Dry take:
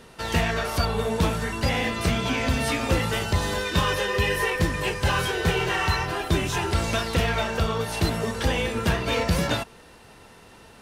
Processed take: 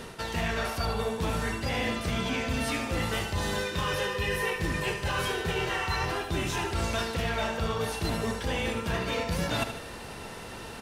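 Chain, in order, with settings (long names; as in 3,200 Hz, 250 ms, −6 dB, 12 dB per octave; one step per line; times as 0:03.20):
reversed playback
downward compressor 16 to 1, threshold −34 dBFS, peak gain reduction 18.5 dB
reversed playback
repeating echo 75 ms, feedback 52%, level −9 dB
level +7.5 dB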